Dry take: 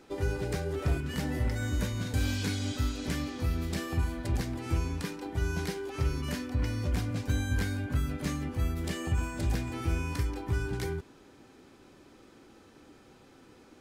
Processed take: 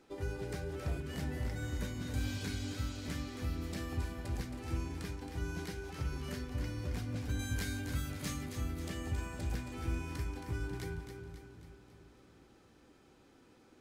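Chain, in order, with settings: 7.39–8.46 s: treble shelf 2.6 kHz +9 dB; two-band feedback delay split 320 Hz, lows 359 ms, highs 271 ms, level -7.5 dB; trim -8 dB

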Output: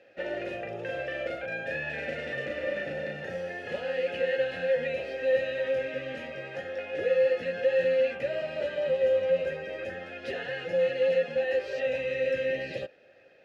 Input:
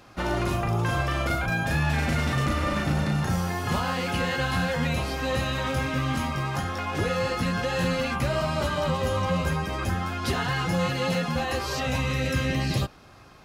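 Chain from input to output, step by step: vowel filter e; treble shelf 8.7 kHz -4 dB; trim +6.5 dB

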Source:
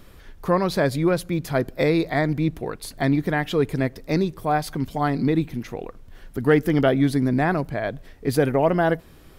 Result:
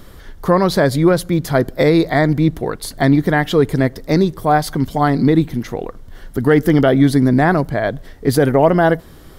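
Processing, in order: peaking EQ 2.5 kHz -9.5 dB 0.22 oct; loudness maximiser +9 dB; trim -1 dB

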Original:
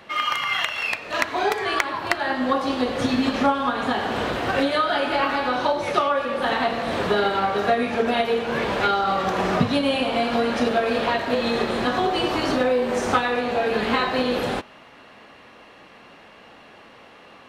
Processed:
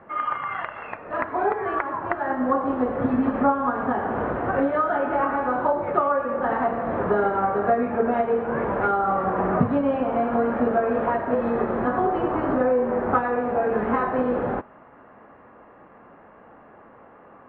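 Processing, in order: low-pass 1.5 kHz 24 dB/octave

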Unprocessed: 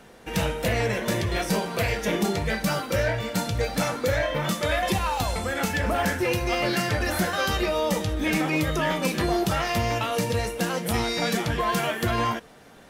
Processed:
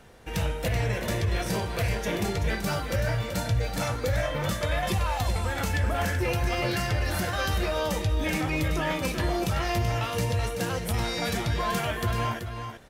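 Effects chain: resonant low shelf 140 Hz +7 dB, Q 1.5; peak limiter -15 dBFS, peak gain reduction 6 dB; on a send: delay 381 ms -8 dB; on the sum: trim -3.5 dB

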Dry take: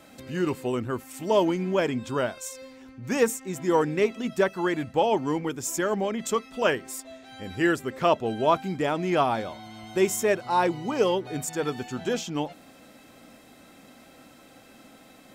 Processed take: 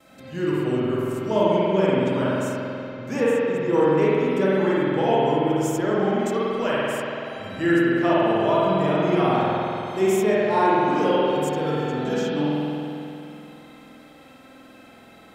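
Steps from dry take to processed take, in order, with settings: gate with hold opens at -46 dBFS; 3.20–3.73 s: treble shelf 6 kHz -11.5 dB; harmonic-percussive split harmonic +5 dB; spring tank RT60 2.8 s, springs 47 ms, chirp 25 ms, DRR -7.5 dB; trim -7 dB

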